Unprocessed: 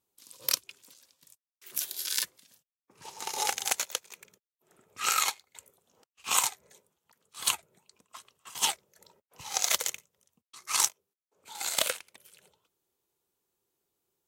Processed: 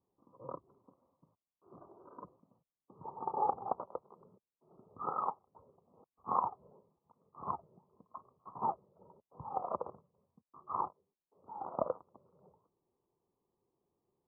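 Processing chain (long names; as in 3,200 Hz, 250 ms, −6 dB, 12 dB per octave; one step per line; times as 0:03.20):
Butterworth low-pass 1,200 Hz 96 dB per octave
parametric band 170 Hz +4.5 dB 1.4 octaves
level +2 dB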